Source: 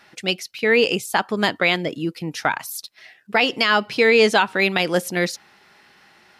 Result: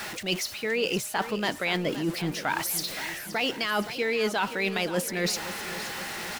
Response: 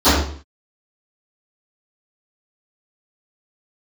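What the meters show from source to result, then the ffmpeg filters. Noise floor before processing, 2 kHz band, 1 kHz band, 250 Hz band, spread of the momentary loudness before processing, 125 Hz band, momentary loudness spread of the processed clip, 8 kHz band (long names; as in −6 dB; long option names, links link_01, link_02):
−54 dBFS, −9.0 dB, −8.0 dB, −6.0 dB, 12 LU, −4.0 dB, 6 LU, +1.0 dB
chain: -af "aeval=exprs='val(0)+0.5*0.0282*sgn(val(0))':channel_layout=same,areverse,acompressor=threshold=-25dB:ratio=6,areverse,aeval=exprs='val(0)+0.00141*sin(2*PI*610*n/s)':channel_layout=same,aecho=1:1:520|1040|1560|2080|2600|3120:0.224|0.121|0.0653|0.0353|0.019|0.0103"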